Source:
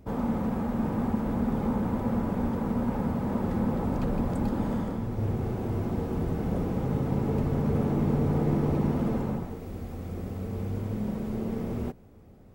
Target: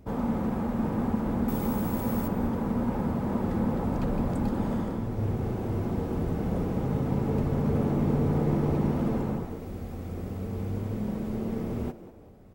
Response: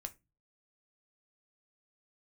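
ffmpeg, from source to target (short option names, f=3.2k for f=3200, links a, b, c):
-filter_complex "[0:a]asettb=1/sr,asplit=3[a][b][c];[a]atrim=end=1.484[d];[b]atrim=start=1.48:end=2.28,asetpts=PTS-STARTPTS,afade=t=in:d=0.004:c=qsin,afade=t=out:st=0.796:d=0.004:c=qsin,aemphasis=mode=production:type=75fm[e];[c]atrim=start=2.276[f];[d][e]acrossfade=d=0.004:c1=hsin:c2=qsin[g];[g][f]acrossfade=d=0.004:c1=qsin:c2=hsin,asplit=2[h][i];[i]asplit=3[j][k][l];[j]adelay=192,afreqshift=110,volume=-16.5dB[m];[k]adelay=384,afreqshift=220,volume=-25.1dB[n];[l]adelay=576,afreqshift=330,volume=-33.8dB[o];[m][n][o]amix=inputs=3:normalize=0[p];[h][p]amix=inputs=2:normalize=0"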